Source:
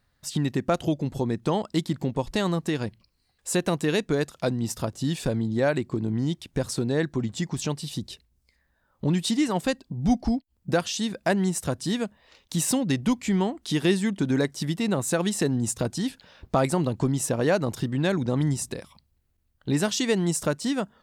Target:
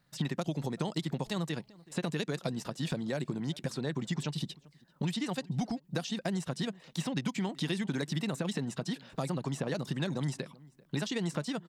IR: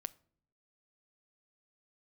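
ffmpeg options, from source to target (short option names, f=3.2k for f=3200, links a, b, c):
-filter_complex "[0:a]acrossover=split=630|3600[a][b][c];[a]acompressor=threshold=-37dB:ratio=4[d];[b]acompressor=threshold=-40dB:ratio=4[e];[c]acompressor=threshold=-34dB:ratio=4[f];[d][e][f]amix=inputs=3:normalize=0,asplit=2[g][h];[h]adelay=696,lowpass=f=1.7k:p=1,volume=-22dB,asplit=2[i][j];[j]adelay=696,lowpass=f=1.7k:p=1,volume=0.17[k];[g][i][k]amix=inputs=3:normalize=0,atempo=1.8,acrossover=split=4700[l][m];[l]lowshelf=f=110:t=q:w=3:g=-9.5[n];[m]acompressor=threshold=-51dB:ratio=6[o];[n][o]amix=inputs=2:normalize=0"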